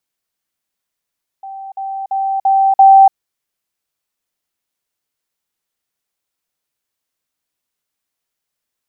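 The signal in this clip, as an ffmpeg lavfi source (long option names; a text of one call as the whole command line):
ffmpeg -f lavfi -i "aevalsrc='pow(10,(-26.5+6*floor(t/0.34))/20)*sin(2*PI*778*t)*clip(min(mod(t,0.34),0.29-mod(t,0.34))/0.005,0,1)':duration=1.7:sample_rate=44100" out.wav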